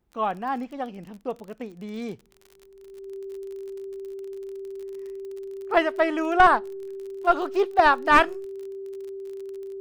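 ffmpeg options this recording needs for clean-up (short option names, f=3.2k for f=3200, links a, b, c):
-af "adeclick=t=4,bandreject=f=390:w=30"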